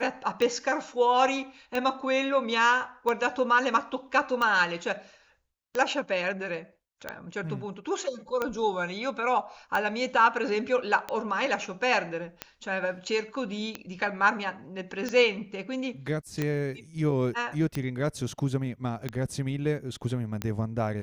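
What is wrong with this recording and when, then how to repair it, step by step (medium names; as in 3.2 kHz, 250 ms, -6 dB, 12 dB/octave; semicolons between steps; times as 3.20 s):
tick 45 rpm -15 dBFS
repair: de-click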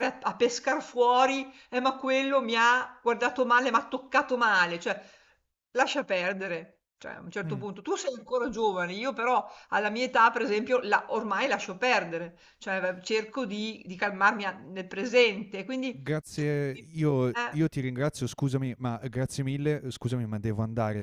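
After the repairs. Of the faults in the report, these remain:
nothing left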